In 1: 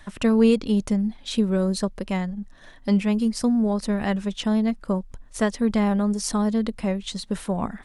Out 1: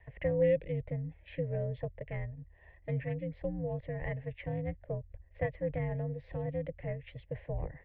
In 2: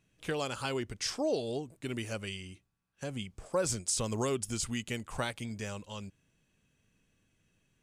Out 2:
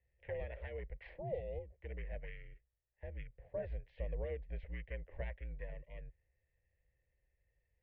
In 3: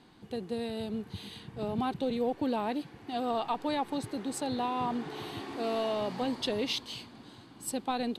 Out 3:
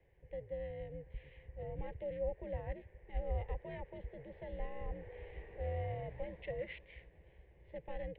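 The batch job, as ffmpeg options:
-filter_complex "[0:a]aeval=exprs='val(0)*sin(2*PI*410*n/s)':c=same,asplit=3[a][b][c];[a]bandpass=f=300:t=q:w=8,volume=0dB[d];[b]bandpass=f=870:t=q:w=8,volume=-6dB[e];[c]bandpass=f=2.24k:t=q:w=8,volume=-9dB[f];[d][e][f]amix=inputs=3:normalize=0,highpass=f=160:t=q:w=0.5412,highpass=f=160:t=q:w=1.307,lowpass=f=3.3k:t=q:w=0.5176,lowpass=f=3.3k:t=q:w=0.7071,lowpass=f=3.3k:t=q:w=1.932,afreqshift=-350,volume=6.5dB"

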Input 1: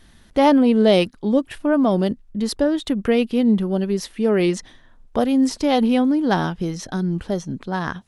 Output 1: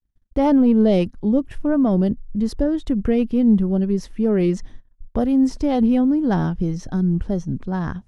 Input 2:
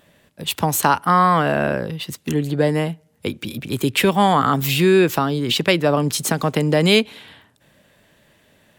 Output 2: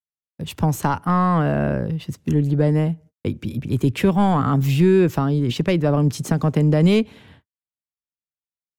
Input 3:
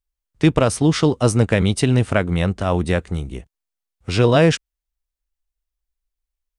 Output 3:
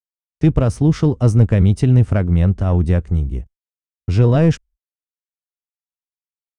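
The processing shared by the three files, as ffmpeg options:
-af "acontrast=21,agate=range=-59dB:threshold=-40dB:ratio=16:detection=peak,aemphasis=mode=reproduction:type=riaa,aexciter=amount=1.7:drive=8.4:freq=5.3k,volume=-10dB"

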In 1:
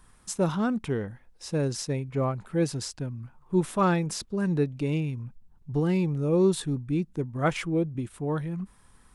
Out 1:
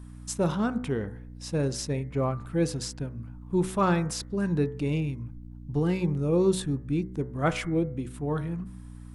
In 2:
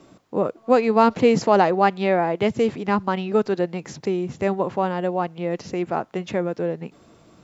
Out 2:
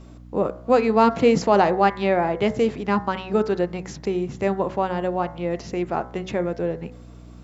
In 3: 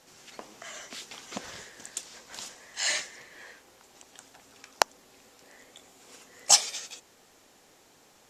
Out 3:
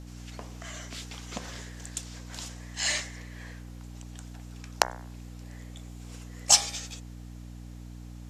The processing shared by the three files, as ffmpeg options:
-af "aeval=exprs='val(0)+0.01*(sin(2*PI*60*n/s)+sin(2*PI*2*60*n/s)/2+sin(2*PI*3*60*n/s)/3+sin(2*PI*4*60*n/s)/4+sin(2*PI*5*60*n/s)/5)':c=same,bandreject=f=62.28:t=h:w=4,bandreject=f=124.56:t=h:w=4,bandreject=f=186.84:t=h:w=4,bandreject=f=249.12:t=h:w=4,bandreject=f=311.4:t=h:w=4,bandreject=f=373.68:t=h:w=4,bandreject=f=435.96:t=h:w=4,bandreject=f=498.24:t=h:w=4,bandreject=f=560.52:t=h:w=4,bandreject=f=622.8:t=h:w=4,bandreject=f=685.08:t=h:w=4,bandreject=f=747.36:t=h:w=4,bandreject=f=809.64:t=h:w=4,bandreject=f=871.92:t=h:w=4,bandreject=f=934.2:t=h:w=4,bandreject=f=996.48:t=h:w=4,bandreject=f=1.05876k:t=h:w=4,bandreject=f=1.12104k:t=h:w=4,bandreject=f=1.18332k:t=h:w=4,bandreject=f=1.2456k:t=h:w=4,bandreject=f=1.30788k:t=h:w=4,bandreject=f=1.37016k:t=h:w=4,bandreject=f=1.43244k:t=h:w=4,bandreject=f=1.49472k:t=h:w=4,bandreject=f=1.557k:t=h:w=4,bandreject=f=1.61928k:t=h:w=4,bandreject=f=1.68156k:t=h:w=4,bandreject=f=1.74384k:t=h:w=4,bandreject=f=1.80612k:t=h:w=4,bandreject=f=1.8684k:t=h:w=4,bandreject=f=1.93068k:t=h:w=4,bandreject=f=1.99296k:t=h:w=4,bandreject=f=2.05524k:t=h:w=4,bandreject=f=2.11752k:t=h:w=4,bandreject=f=2.1798k:t=h:w=4"

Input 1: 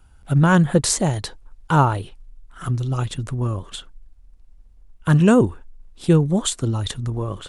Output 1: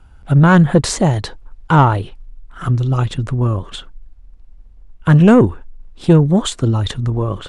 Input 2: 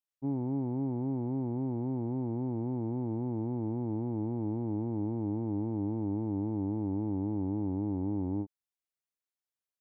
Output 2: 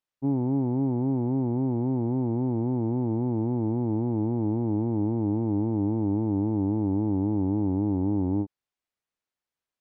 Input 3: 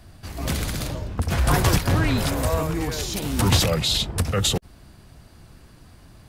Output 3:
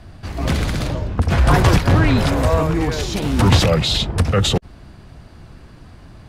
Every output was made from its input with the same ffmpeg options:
-af "acontrast=73,aemphasis=mode=reproduction:type=50fm"

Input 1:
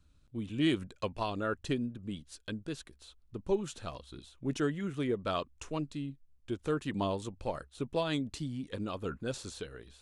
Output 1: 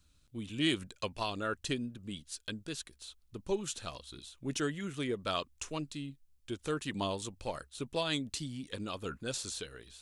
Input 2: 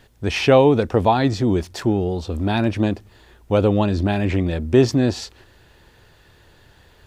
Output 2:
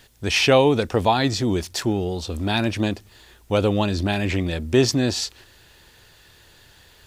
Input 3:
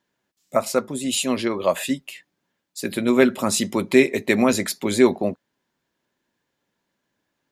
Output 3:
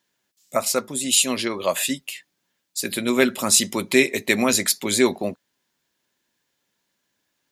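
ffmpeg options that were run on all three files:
-af "highshelf=f=2.2k:g=12,volume=-3.5dB"

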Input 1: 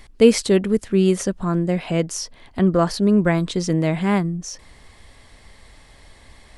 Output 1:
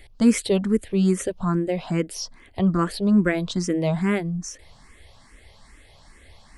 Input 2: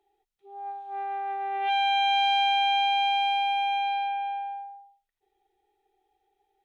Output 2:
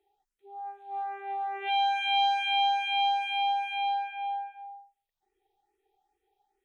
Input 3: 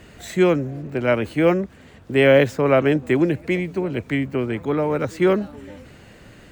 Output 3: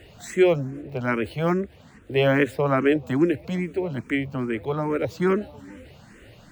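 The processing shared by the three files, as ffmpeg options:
-filter_complex "[0:a]asplit=2[a][b];[b]afreqshift=2.4[c];[a][c]amix=inputs=2:normalize=1"

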